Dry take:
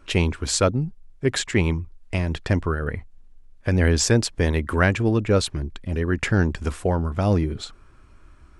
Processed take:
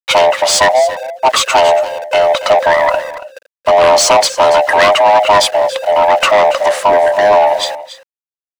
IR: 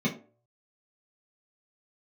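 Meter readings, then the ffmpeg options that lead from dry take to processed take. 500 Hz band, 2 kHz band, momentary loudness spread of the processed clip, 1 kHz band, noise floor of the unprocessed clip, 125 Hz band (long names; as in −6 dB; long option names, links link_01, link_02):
+16.5 dB, +12.0 dB, 7 LU, +23.0 dB, −50 dBFS, −15.5 dB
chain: -filter_complex "[0:a]afftfilt=real='real(if(lt(b,1008),b+24*(1-2*mod(floor(b/24),2)),b),0)':imag='imag(if(lt(b,1008),b+24*(1-2*mod(floor(b/24),2)),b),0)':win_size=2048:overlap=0.75,agate=range=-11dB:threshold=-41dB:ratio=16:detection=peak,acrossover=split=390[link_01][link_02];[link_02]aeval=exprs='0.562*sin(PI/2*2.51*val(0)/0.562)':channel_layout=same[link_03];[link_01][link_03]amix=inputs=2:normalize=0,lowshelf=frequency=200:width_type=q:width=1.5:gain=-8.5,aeval=exprs='val(0)*gte(abs(val(0)),0.0224)':channel_layout=same,asplit=2[link_04][link_05];[link_05]highpass=frequency=720:poles=1,volume=15dB,asoftclip=type=tanh:threshold=-1dB[link_06];[link_04][link_06]amix=inputs=2:normalize=0,lowpass=frequency=5000:poles=1,volume=-6dB,asplit=2[link_07][link_08];[link_08]aecho=0:1:281:0.188[link_09];[link_07][link_09]amix=inputs=2:normalize=0,volume=-1dB"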